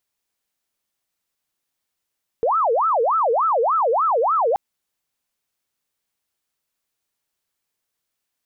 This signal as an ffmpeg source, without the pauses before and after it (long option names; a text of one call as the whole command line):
ffmpeg -f lavfi -i "aevalsrc='0.168*sin(2*PI*(889*t-441/(2*PI*3.4)*sin(2*PI*3.4*t)))':duration=2.13:sample_rate=44100" out.wav